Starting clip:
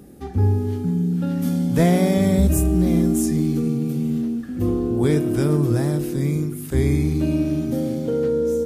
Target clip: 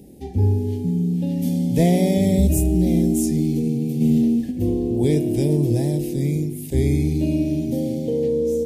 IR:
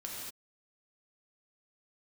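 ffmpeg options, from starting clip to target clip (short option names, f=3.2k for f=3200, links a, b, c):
-filter_complex "[0:a]asplit=3[a][b][c];[a]afade=t=out:st=4:d=0.02[d];[b]acontrast=59,afade=t=in:st=4:d=0.02,afade=t=out:st=4.5:d=0.02[e];[c]afade=t=in:st=4.5:d=0.02[f];[d][e][f]amix=inputs=3:normalize=0,asuperstop=centerf=1300:order=4:qfactor=0.92"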